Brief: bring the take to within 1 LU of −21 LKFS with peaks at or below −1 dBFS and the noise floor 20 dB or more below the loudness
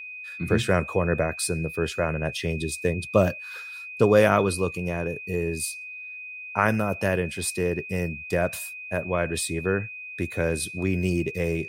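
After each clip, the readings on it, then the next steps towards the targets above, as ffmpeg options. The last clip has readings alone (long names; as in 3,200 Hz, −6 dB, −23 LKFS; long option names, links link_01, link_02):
interfering tone 2,500 Hz; level of the tone −36 dBFS; integrated loudness −26.0 LKFS; sample peak −4.5 dBFS; target loudness −21.0 LKFS
→ -af "bandreject=frequency=2500:width=30"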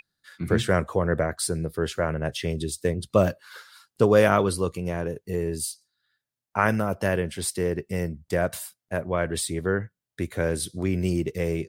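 interfering tone none found; integrated loudness −26.0 LKFS; sample peak −4.5 dBFS; target loudness −21.0 LKFS
→ -af "volume=5dB,alimiter=limit=-1dB:level=0:latency=1"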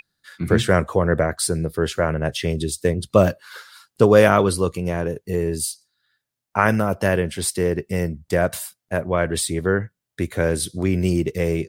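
integrated loudness −21.0 LKFS; sample peak −1.0 dBFS; background noise floor −83 dBFS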